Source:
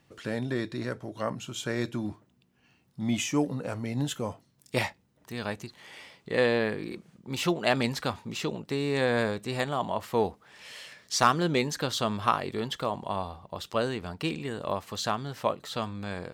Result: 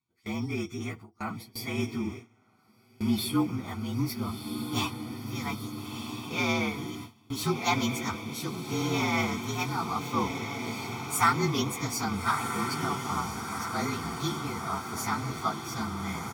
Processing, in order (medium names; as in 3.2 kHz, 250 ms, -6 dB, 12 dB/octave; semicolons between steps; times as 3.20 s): frequency axis rescaled in octaves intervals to 115%; high-pass 160 Hz 6 dB/octave; comb 0.9 ms, depth 92%; echo that smears into a reverb 1377 ms, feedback 63%, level -6.5 dB; gate with hold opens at -29 dBFS